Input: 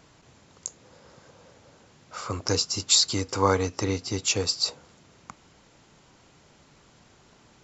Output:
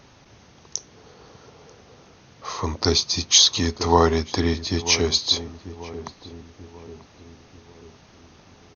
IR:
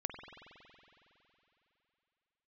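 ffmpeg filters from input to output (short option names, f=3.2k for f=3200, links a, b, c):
-filter_complex "[0:a]asetrate=38499,aresample=44100,asplit=2[a][b];[b]adelay=939,lowpass=f=920:p=1,volume=-13dB,asplit=2[c][d];[d]adelay=939,lowpass=f=920:p=1,volume=0.52,asplit=2[e][f];[f]adelay=939,lowpass=f=920:p=1,volume=0.52,asplit=2[g][h];[h]adelay=939,lowpass=f=920:p=1,volume=0.52,asplit=2[i][j];[j]adelay=939,lowpass=f=920:p=1,volume=0.52[k];[a][c][e][g][i][k]amix=inputs=6:normalize=0,volume=5dB"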